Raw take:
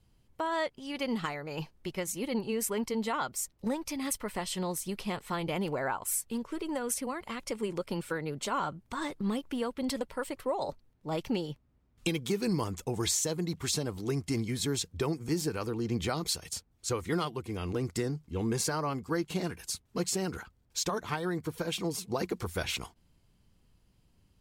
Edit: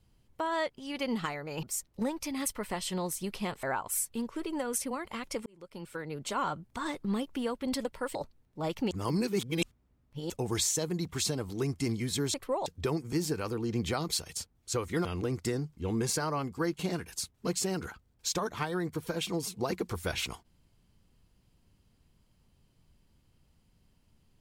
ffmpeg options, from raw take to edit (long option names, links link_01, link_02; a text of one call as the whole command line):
ffmpeg -i in.wav -filter_complex "[0:a]asplit=10[link_01][link_02][link_03][link_04][link_05][link_06][link_07][link_08][link_09][link_10];[link_01]atrim=end=1.632[link_11];[link_02]atrim=start=3.278:end=5.282[link_12];[link_03]atrim=start=5.788:end=7.62,asetpts=PTS-STARTPTS,afade=type=out:start_time=1.828:duration=0.004:curve=hsin[link_13];[link_04]atrim=start=7.62:end=10.312,asetpts=PTS-STARTPTS,afade=type=in:duration=0.94[link_14];[link_05]atrim=start=10.628:end=11.392[link_15];[link_06]atrim=start=11.388:end=12.782,asetpts=PTS-STARTPTS,areverse[link_16];[link_07]atrim=start=12.778:end=14.822[link_17];[link_08]atrim=start=10.308:end=10.632[link_18];[link_09]atrim=start=14.818:end=17.212[link_19];[link_10]atrim=start=17.558[link_20];[link_11][link_12]acrossfade=duration=0.004:curve1=hsin:curve2=hsin[link_21];[link_13][link_14]concat=n=2:v=0:a=1[link_22];[link_21][link_22]acrossfade=duration=0.004:curve1=hsin:curve2=hsin[link_23];[link_23][link_15]acrossfade=duration=0.004:curve1=hsin:curve2=hsin[link_24];[link_24][link_16]acrossfade=duration=0.004:curve1=hsin:curve2=hsin[link_25];[link_25][link_17]acrossfade=duration=0.004:curve1=hsin:curve2=hsin[link_26];[link_26][link_18]acrossfade=duration=0.004:curve1=hsin:curve2=hsin[link_27];[link_27][link_19]acrossfade=duration=0.004:curve1=hsin:curve2=hsin[link_28];[link_28][link_20]acrossfade=duration=0.004:curve1=hsin:curve2=hsin" out.wav